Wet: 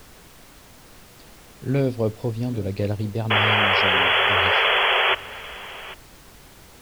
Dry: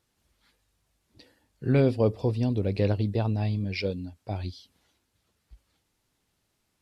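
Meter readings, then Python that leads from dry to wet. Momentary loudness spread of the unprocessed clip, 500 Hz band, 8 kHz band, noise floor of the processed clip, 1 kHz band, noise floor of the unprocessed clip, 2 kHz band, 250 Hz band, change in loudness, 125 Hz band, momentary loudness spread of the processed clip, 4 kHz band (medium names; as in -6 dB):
13 LU, +3.5 dB, no reading, -48 dBFS, +19.0 dB, -76 dBFS, +23.0 dB, 0.0 dB, +8.0 dB, 0.0 dB, 18 LU, +23.5 dB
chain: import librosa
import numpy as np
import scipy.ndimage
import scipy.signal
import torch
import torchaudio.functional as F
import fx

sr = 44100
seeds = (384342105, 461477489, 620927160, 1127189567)

y = fx.spec_paint(x, sr, seeds[0], shape='noise', start_s=3.3, length_s=1.85, low_hz=370.0, high_hz=3400.0, level_db=-19.0)
y = y + 10.0 ** (-18.0 / 20.0) * np.pad(y, (int(794 * sr / 1000.0), 0))[:len(y)]
y = fx.dmg_noise_colour(y, sr, seeds[1], colour='pink', level_db=-47.0)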